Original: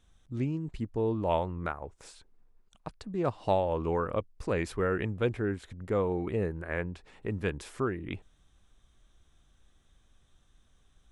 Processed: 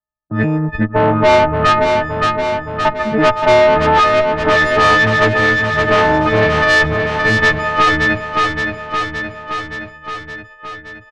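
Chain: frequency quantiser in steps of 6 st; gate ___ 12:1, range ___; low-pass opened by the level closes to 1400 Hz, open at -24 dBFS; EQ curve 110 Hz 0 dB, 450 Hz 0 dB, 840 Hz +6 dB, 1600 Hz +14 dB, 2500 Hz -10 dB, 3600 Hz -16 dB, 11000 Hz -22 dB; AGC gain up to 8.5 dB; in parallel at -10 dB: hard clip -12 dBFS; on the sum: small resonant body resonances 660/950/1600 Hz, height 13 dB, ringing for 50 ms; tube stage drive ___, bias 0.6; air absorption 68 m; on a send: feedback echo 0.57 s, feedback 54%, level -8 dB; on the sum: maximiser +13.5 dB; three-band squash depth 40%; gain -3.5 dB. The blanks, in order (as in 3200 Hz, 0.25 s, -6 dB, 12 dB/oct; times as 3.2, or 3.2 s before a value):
-49 dBFS, -52 dB, 14 dB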